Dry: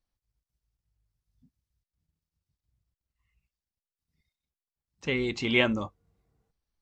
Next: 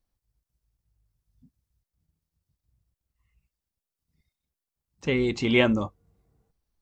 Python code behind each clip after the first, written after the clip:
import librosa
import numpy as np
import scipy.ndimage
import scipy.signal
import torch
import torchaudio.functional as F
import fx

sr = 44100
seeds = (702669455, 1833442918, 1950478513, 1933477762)

y = fx.peak_eq(x, sr, hz=2800.0, db=-5.5, octaves=2.9)
y = F.gain(torch.from_numpy(y), 5.5).numpy()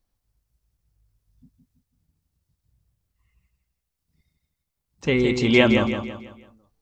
y = fx.echo_feedback(x, sr, ms=165, feedback_pct=40, wet_db=-6.5)
y = F.gain(torch.from_numpy(y), 4.0).numpy()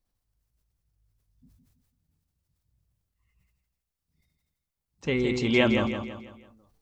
y = fx.sustainer(x, sr, db_per_s=45.0)
y = F.gain(torch.from_numpy(y), -6.0).numpy()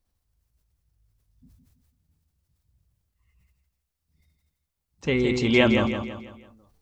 y = fx.peak_eq(x, sr, hz=73.0, db=13.0, octaves=0.2)
y = F.gain(torch.from_numpy(y), 3.0).numpy()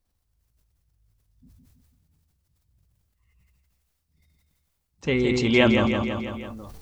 y = fx.sustainer(x, sr, db_per_s=24.0)